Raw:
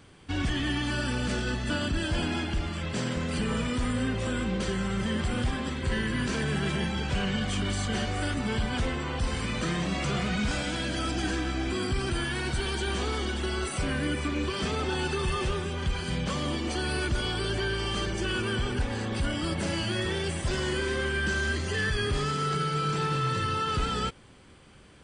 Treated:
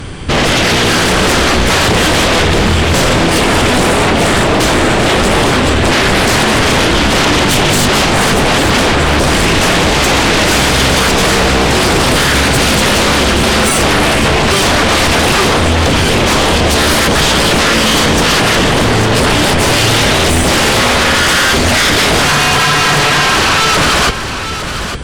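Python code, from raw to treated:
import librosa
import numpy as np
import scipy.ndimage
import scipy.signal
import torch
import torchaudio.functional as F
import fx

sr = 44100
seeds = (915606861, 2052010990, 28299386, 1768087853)

p1 = fx.low_shelf(x, sr, hz=88.0, db=10.0)
p2 = fx.fold_sine(p1, sr, drive_db=18, ceiling_db=-12.0)
p3 = p2 + fx.echo_single(p2, sr, ms=855, db=-9.5, dry=0)
y = p3 * 10.0 ** (4.5 / 20.0)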